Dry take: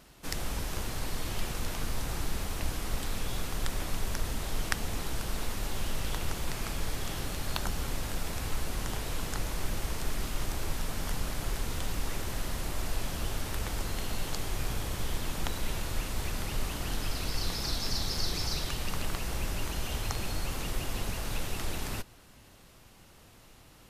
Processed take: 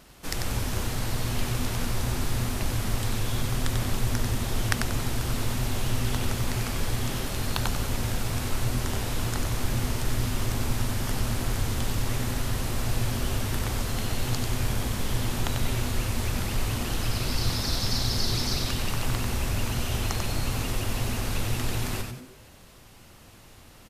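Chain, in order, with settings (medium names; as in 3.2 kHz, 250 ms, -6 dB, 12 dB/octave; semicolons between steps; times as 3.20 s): frequency-shifting echo 93 ms, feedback 38%, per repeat -130 Hz, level -5 dB; trim +3.5 dB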